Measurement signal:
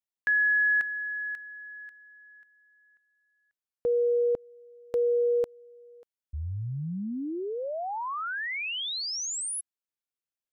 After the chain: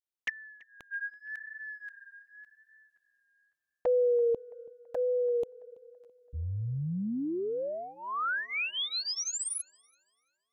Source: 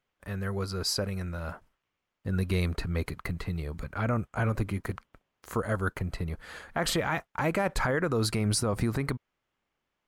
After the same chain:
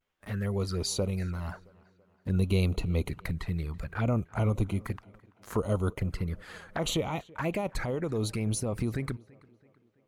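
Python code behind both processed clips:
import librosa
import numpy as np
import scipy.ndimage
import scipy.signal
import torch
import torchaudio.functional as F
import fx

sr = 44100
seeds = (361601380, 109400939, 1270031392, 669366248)

p1 = fx.rider(x, sr, range_db=4, speed_s=2.0)
p2 = fx.vibrato(p1, sr, rate_hz=0.84, depth_cents=68.0)
p3 = fx.env_flanger(p2, sr, rest_ms=11.9, full_db=-25.5)
y = p3 + fx.echo_tape(p3, sr, ms=333, feedback_pct=55, wet_db=-22.5, lp_hz=3400.0, drive_db=13.0, wow_cents=22, dry=0)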